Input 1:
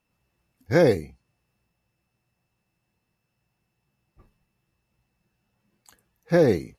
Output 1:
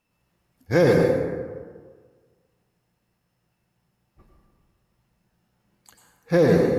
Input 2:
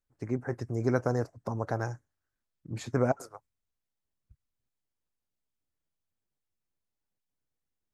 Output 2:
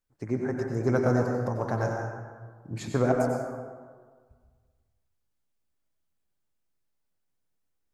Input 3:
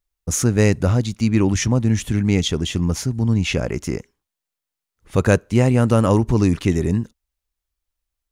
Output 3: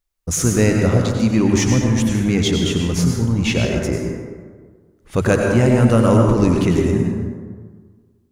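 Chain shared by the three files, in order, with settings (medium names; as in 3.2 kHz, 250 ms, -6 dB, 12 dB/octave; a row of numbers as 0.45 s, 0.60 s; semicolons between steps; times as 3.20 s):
hum notches 50/100/150 Hz; in parallel at -7.5 dB: hard clipper -20 dBFS; on the sum: plate-style reverb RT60 1.6 s, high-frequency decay 0.45×, pre-delay 80 ms, DRR 0.5 dB; trim -1.5 dB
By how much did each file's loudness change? +1.0 LU, +4.0 LU, +2.0 LU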